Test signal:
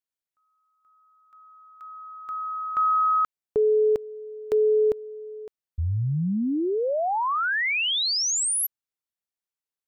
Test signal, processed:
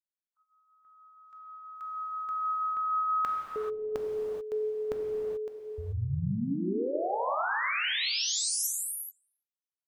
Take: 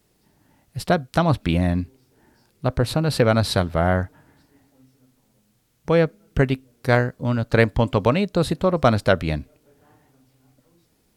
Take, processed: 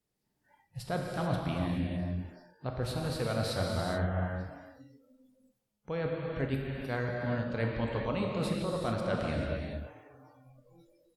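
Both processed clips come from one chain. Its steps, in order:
far-end echo of a speakerphone 340 ms, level −28 dB
reversed playback
downward compressor 5 to 1, threshold −34 dBFS
reversed playback
reverb whose tail is shaped and stops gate 460 ms flat, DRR −1.5 dB
noise reduction from a noise print of the clip's start 21 dB

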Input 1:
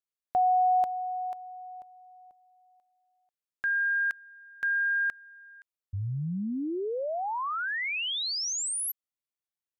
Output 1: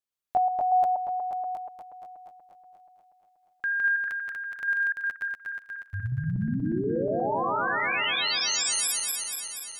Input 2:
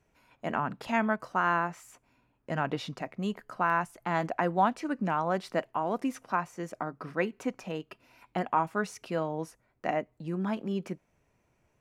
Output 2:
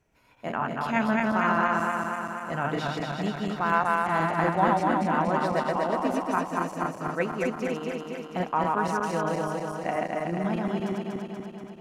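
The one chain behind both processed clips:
feedback delay that plays each chunk backwards 120 ms, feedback 81%, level −1.5 dB

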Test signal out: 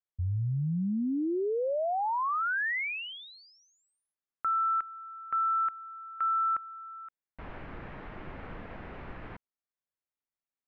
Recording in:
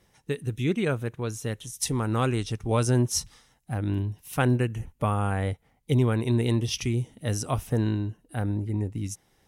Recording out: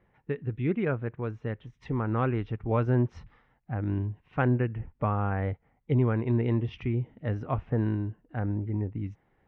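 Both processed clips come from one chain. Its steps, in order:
low-pass filter 2,200 Hz 24 dB per octave
level −2 dB

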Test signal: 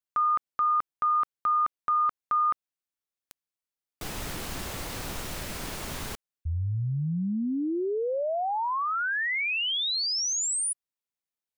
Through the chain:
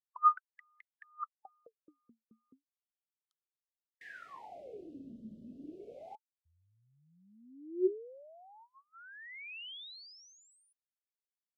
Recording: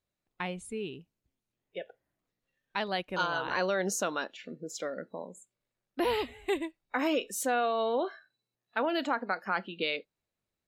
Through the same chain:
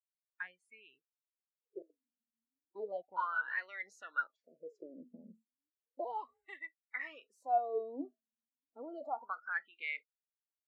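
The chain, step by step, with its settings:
LFO wah 0.33 Hz 220–2,100 Hz, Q 17
noise reduction from a noise print of the clip's start 28 dB
level +6 dB

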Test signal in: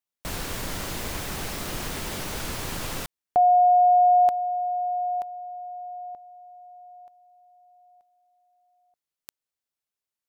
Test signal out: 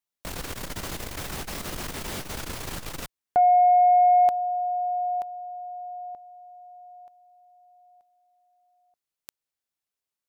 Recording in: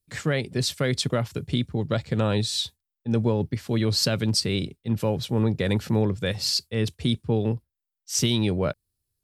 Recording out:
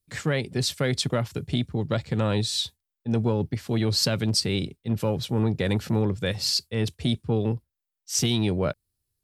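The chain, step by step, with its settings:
saturating transformer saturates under 220 Hz

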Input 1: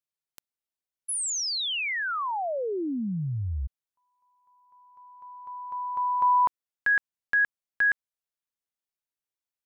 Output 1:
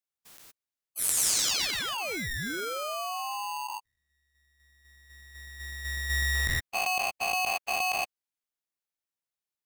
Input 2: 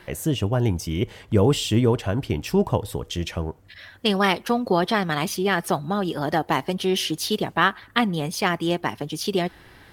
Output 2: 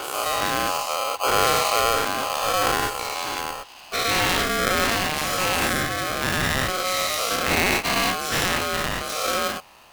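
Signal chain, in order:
every bin's largest magnitude spread in time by 240 ms
ring modulator with a square carrier 920 Hz
level −7 dB

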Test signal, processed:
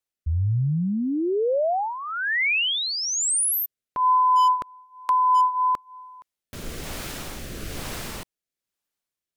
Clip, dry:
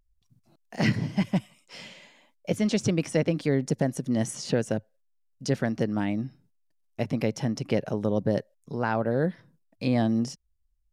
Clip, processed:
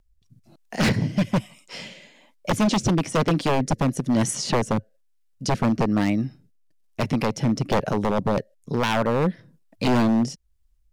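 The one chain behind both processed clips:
rotating-speaker cabinet horn 1.1 Hz
wave folding −23 dBFS
level +9 dB

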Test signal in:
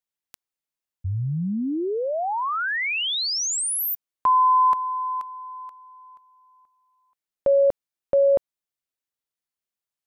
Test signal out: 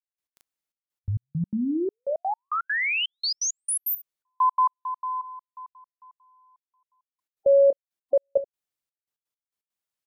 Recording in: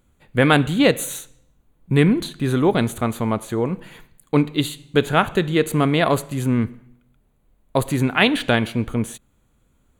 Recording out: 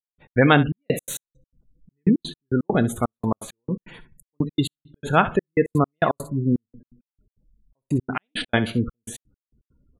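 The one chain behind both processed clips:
gate on every frequency bin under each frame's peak −20 dB strong
ambience of single reflections 29 ms −17.5 dB, 67 ms −15.5 dB
gate pattern "..x.xxxx..x.x" 167 BPM −60 dB

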